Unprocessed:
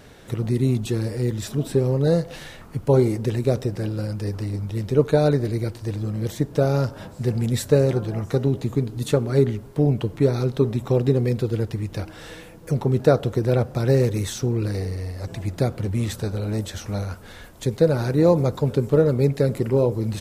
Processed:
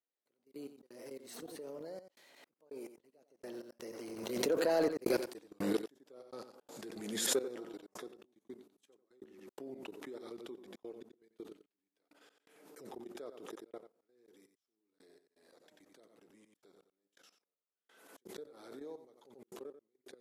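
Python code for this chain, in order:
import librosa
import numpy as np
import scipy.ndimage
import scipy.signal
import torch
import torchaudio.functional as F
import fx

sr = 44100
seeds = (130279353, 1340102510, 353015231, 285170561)

y = fx.doppler_pass(x, sr, speed_mps=32, closest_m=6.8, pass_at_s=5.33)
y = scipy.signal.sosfilt(scipy.signal.butter(4, 280.0, 'highpass', fs=sr, output='sos'), y)
y = fx.high_shelf(y, sr, hz=9700.0, db=4.5)
y = fx.level_steps(y, sr, step_db=18)
y = fx.step_gate(y, sr, bpm=83, pattern='...x.xxxxxx.x..x', floor_db=-60.0, edge_ms=4.5)
y = 10.0 ** (-30.5 / 20.0) * np.tanh(y / 10.0 ** (-30.5 / 20.0))
y = y + 10.0 ** (-11.0 / 20.0) * np.pad(y, (int(90 * sr / 1000.0), 0))[:len(y)]
y = fx.pre_swell(y, sr, db_per_s=45.0)
y = F.gain(torch.from_numpy(y), 8.5).numpy()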